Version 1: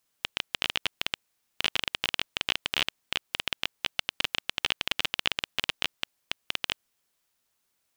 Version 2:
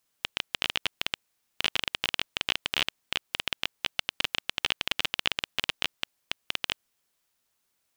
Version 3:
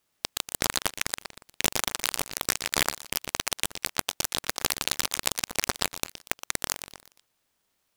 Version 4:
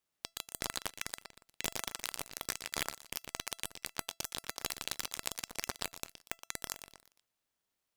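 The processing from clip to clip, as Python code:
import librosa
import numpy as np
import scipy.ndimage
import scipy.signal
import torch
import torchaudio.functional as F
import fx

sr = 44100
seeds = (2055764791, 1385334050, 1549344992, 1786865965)

y1 = x
y2 = fx.echo_feedback(y1, sr, ms=119, feedback_pct=42, wet_db=-11.0)
y2 = fx.noise_mod_delay(y2, sr, seeds[0], noise_hz=1800.0, depth_ms=0.15)
y2 = y2 * librosa.db_to_amplitude(2.0)
y3 = fx.comb_fb(y2, sr, f0_hz=670.0, decay_s=0.19, harmonics='all', damping=0.0, mix_pct=40)
y3 = y3 * librosa.db_to_amplitude(-7.0)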